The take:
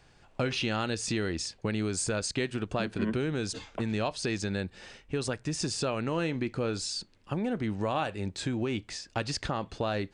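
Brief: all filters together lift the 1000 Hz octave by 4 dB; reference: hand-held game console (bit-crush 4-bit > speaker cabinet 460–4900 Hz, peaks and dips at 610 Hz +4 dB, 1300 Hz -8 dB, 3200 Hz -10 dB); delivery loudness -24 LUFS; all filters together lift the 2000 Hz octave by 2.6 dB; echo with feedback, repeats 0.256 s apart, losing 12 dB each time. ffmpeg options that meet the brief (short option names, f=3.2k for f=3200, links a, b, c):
-af "equalizer=f=1k:t=o:g=6.5,equalizer=f=2k:t=o:g=4.5,aecho=1:1:256|512|768:0.251|0.0628|0.0157,acrusher=bits=3:mix=0:aa=0.000001,highpass=460,equalizer=f=610:t=q:w=4:g=4,equalizer=f=1.3k:t=q:w=4:g=-8,equalizer=f=3.2k:t=q:w=4:g=-10,lowpass=f=4.9k:w=0.5412,lowpass=f=4.9k:w=1.3066,volume=9dB"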